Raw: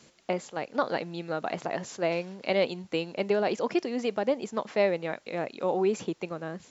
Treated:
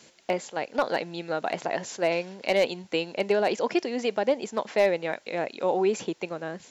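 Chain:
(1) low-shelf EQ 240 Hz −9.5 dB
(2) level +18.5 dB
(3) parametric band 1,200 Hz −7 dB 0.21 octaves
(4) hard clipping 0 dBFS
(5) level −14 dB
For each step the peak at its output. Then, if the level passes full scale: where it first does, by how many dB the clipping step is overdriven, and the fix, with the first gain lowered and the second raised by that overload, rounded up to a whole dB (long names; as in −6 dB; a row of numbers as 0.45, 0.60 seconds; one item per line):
−13.0, +5.5, +5.0, 0.0, −14.0 dBFS
step 2, 5.0 dB
step 2 +13.5 dB, step 5 −9 dB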